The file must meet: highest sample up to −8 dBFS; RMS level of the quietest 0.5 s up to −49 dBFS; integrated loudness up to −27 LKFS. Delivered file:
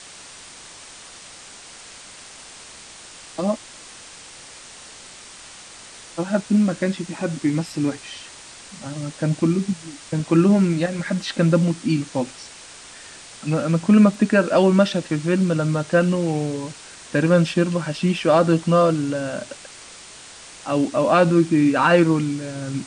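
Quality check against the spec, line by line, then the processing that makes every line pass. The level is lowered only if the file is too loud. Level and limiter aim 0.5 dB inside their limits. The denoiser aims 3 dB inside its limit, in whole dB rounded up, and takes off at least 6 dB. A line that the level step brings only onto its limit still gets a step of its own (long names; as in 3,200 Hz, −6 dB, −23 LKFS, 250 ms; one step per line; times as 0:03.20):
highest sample −4.0 dBFS: out of spec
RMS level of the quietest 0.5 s −42 dBFS: out of spec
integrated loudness −20.0 LKFS: out of spec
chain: level −7.5 dB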